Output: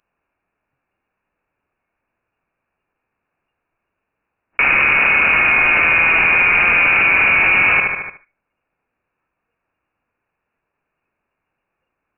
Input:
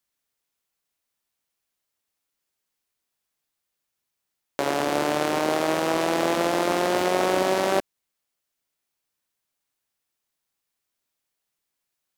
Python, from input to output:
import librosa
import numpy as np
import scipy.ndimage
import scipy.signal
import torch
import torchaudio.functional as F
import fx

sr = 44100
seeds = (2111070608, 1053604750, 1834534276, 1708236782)

p1 = fx.low_shelf(x, sr, hz=140.0, db=-8.0)
p2 = fx.leveller(p1, sr, passes=5)
p3 = fx.peak_eq(p2, sr, hz=790.0, db=-13.0, octaves=0.35)
p4 = p3 + fx.echo_thinned(p3, sr, ms=74, feedback_pct=22, hz=180.0, wet_db=-11.0, dry=0)
p5 = fx.noise_reduce_blind(p4, sr, reduce_db=16)
p6 = fx.freq_invert(p5, sr, carrier_hz=2800)
y = fx.env_flatten(p6, sr, amount_pct=70)